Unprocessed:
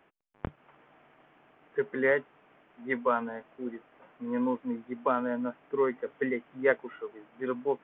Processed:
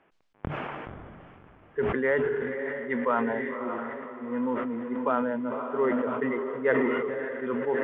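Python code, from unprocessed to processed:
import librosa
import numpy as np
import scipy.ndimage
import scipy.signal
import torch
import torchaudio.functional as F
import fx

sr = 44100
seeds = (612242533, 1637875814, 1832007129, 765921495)

y = fx.air_absorb(x, sr, metres=140.0)
y = fx.echo_diffused(y, sr, ms=572, feedback_pct=44, wet_db=-7.0)
y = fx.sustainer(y, sr, db_per_s=23.0)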